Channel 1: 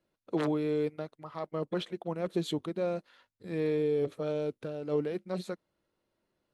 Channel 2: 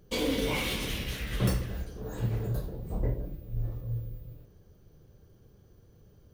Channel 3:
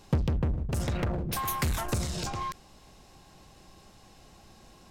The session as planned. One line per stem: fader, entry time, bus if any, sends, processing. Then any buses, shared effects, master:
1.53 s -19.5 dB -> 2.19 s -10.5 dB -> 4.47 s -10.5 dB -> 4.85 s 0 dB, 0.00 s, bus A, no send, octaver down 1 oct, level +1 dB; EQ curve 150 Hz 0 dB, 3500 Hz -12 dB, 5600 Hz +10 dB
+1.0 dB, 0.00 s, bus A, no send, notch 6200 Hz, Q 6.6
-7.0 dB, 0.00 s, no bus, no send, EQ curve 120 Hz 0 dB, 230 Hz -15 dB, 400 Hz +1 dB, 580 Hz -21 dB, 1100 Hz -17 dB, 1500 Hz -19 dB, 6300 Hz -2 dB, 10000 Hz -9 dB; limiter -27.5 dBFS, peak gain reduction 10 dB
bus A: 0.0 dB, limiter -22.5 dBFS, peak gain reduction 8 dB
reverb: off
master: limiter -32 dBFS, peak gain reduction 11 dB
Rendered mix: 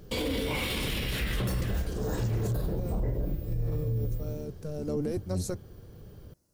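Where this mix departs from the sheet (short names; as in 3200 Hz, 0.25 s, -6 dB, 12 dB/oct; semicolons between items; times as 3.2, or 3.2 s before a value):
stem 1 -19.5 dB -> -13.0 dB; stem 2 +1.0 dB -> +9.5 dB; master: missing limiter -32 dBFS, peak gain reduction 11 dB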